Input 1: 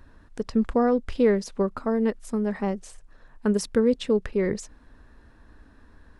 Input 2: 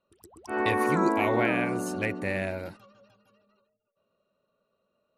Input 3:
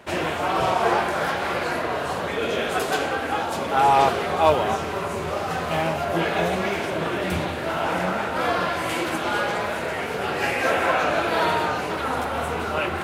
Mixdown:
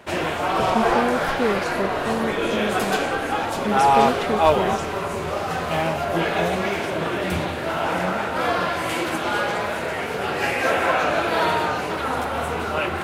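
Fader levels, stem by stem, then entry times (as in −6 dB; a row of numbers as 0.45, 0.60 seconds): −2.5, −7.0, +1.0 decibels; 0.20, 1.40, 0.00 seconds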